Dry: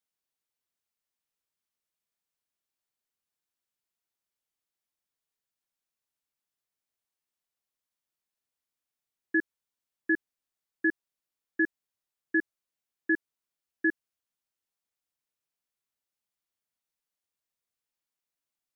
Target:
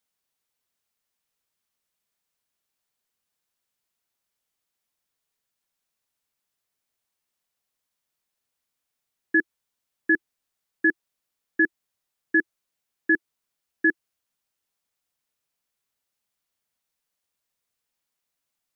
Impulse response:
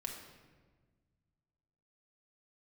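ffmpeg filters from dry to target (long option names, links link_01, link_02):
-af "equalizer=frequency=330:width_type=o:width=0.21:gain=-3.5,volume=7dB"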